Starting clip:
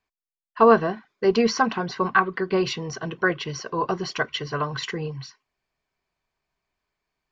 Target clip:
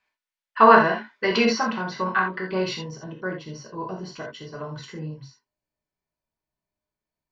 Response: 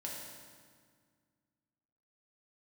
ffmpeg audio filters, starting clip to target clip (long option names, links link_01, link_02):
-filter_complex "[0:a]asetnsamples=nb_out_samples=441:pad=0,asendcmd='1.45 equalizer g 3.5;2.82 equalizer g -8.5',equalizer=frequency=2100:width=0.37:gain=14.5[link_01];[1:a]atrim=start_sample=2205,atrim=end_sample=3969[link_02];[link_01][link_02]afir=irnorm=-1:irlink=0,volume=-2dB"